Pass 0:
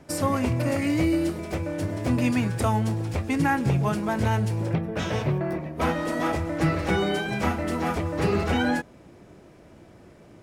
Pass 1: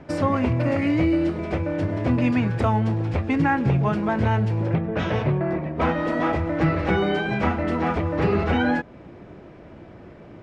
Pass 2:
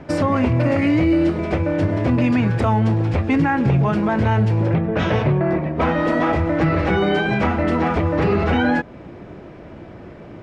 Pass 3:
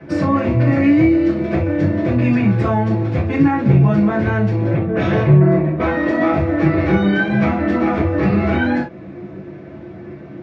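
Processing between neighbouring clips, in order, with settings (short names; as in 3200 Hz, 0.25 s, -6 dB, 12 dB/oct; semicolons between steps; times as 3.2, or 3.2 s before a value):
LPF 2900 Hz 12 dB/oct; in parallel at +1 dB: compressor, threshold -31 dBFS, peak gain reduction 12.5 dB
limiter -15 dBFS, peak gain reduction 4.5 dB; gain +5.5 dB
reverb, pre-delay 3 ms, DRR -7 dB; gain -15 dB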